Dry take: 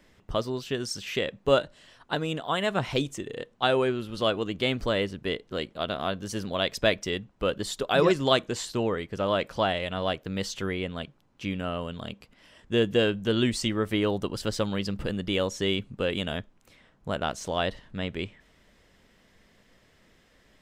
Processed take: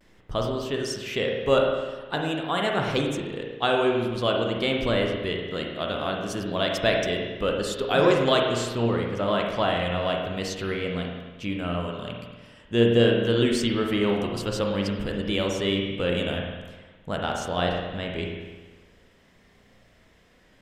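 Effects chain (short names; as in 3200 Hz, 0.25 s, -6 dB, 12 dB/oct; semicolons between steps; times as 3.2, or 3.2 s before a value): vibrato 0.47 Hz 33 cents; spring tank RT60 1.3 s, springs 34/51 ms, chirp 65 ms, DRR 0.5 dB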